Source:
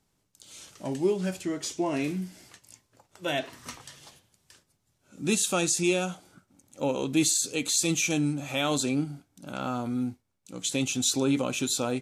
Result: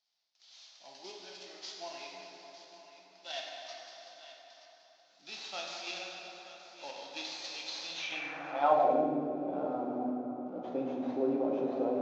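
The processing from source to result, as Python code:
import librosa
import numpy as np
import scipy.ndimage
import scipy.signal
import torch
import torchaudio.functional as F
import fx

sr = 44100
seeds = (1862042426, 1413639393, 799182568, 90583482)

p1 = fx.cvsd(x, sr, bps=32000)
p2 = scipy.signal.sosfilt(scipy.signal.butter(2, 110.0, 'highpass', fs=sr, output='sos'), p1)
p3 = fx.peak_eq(p2, sr, hz=740.0, db=14.0, octaves=0.77)
p4 = fx.level_steps(p3, sr, step_db=21)
p5 = p3 + (p4 * 10.0 ** (0.0 / 20.0))
p6 = fx.vibrato(p5, sr, rate_hz=3.7, depth_cents=23.0)
p7 = p6 + fx.echo_single(p6, sr, ms=925, db=-13.5, dry=0)
p8 = fx.rev_plate(p7, sr, seeds[0], rt60_s=4.0, hf_ratio=0.5, predelay_ms=0, drr_db=-2.0)
p9 = fx.filter_sweep_bandpass(p8, sr, from_hz=4600.0, to_hz=390.0, start_s=7.89, end_s=9.11, q=2.1)
p10 = fx.band_squash(p9, sr, depth_pct=70, at=(7.44, 8.12))
y = p10 * 10.0 ** (-6.0 / 20.0)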